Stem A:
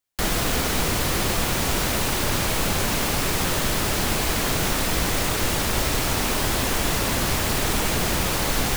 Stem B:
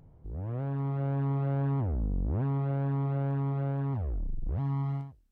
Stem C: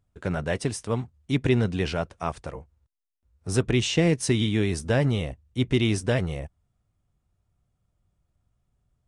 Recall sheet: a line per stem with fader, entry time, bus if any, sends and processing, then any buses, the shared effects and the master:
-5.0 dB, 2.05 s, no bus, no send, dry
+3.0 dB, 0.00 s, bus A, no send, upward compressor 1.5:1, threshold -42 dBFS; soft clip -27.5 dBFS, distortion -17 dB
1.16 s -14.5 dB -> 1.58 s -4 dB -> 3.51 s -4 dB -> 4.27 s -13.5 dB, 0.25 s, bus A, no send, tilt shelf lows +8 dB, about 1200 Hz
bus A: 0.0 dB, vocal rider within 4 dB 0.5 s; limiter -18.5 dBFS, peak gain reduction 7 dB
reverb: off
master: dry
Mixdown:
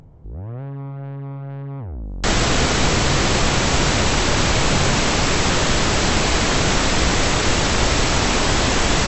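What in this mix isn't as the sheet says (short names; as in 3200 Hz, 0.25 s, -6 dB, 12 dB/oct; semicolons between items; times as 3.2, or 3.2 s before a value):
stem A -5.0 dB -> +6.0 dB; stem C: muted; master: extra brick-wall FIR low-pass 8000 Hz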